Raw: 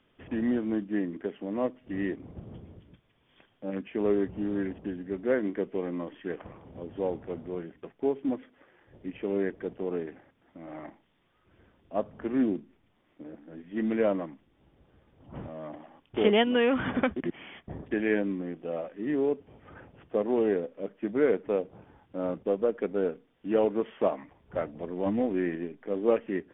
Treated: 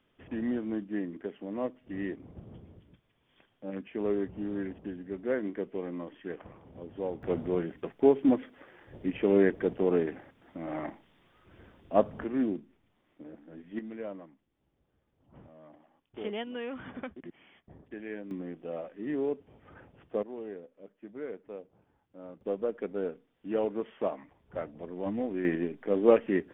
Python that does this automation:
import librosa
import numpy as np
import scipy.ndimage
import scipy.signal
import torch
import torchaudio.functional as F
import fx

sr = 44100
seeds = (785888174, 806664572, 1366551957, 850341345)

y = fx.gain(x, sr, db=fx.steps((0.0, -4.0), (7.23, 6.0), (12.24, -3.0), (13.79, -13.5), (18.31, -4.0), (20.23, -15.0), (22.41, -5.0), (25.45, 3.5)))